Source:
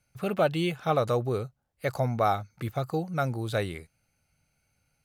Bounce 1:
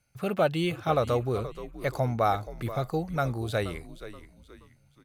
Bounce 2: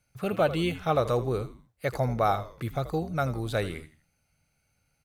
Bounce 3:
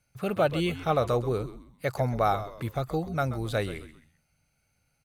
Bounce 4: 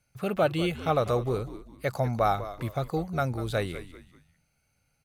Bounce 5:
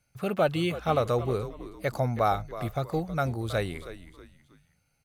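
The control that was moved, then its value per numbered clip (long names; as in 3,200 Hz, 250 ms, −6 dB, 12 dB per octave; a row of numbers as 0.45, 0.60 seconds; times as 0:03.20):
echo with shifted repeats, delay time: 476, 81, 131, 195, 319 milliseconds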